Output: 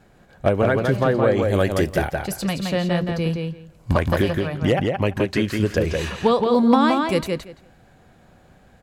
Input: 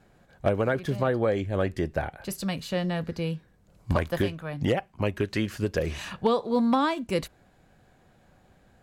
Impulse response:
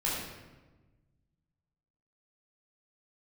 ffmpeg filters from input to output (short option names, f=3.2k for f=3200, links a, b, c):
-filter_complex "[0:a]asettb=1/sr,asplit=3[a][b][c];[a]atrim=end=1.424[d];[b]atrim=start=1.42:end=2.11,asetpts=PTS-STARTPTS,afade=t=in:d=0.004:c=qsin,afade=t=out:st=0.686:d=0.004:c=qsin,aemphasis=mode=production:type=75kf[e];[c]atrim=start=2.106[f];[d][e]acrossfade=d=0.004:c1=hsin:c2=qsin[g];[g][f]acrossfade=d=0.004:c1=qsin:c2=hsin,asplit=2[h][i];[i]adelay=170,lowpass=f=4.9k:p=1,volume=-3.5dB,asplit=2[j][k];[k]adelay=170,lowpass=f=4.9k:p=1,volume=0.17,asplit=2[l][m];[m]adelay=170,lowpass=f=4.9k:p=1,volume=0.17[n];[h][j][l][n]amix=inputs=4:normalize=0,volume=5.5dB"